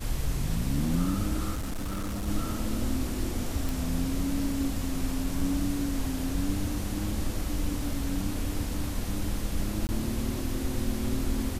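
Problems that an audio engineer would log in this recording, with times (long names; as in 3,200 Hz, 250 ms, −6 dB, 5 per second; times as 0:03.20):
0:01.54–0:02.28: clipping −29 dBFS
0:03.69: click
0:09.87–0:09.89: drop-out 19 ms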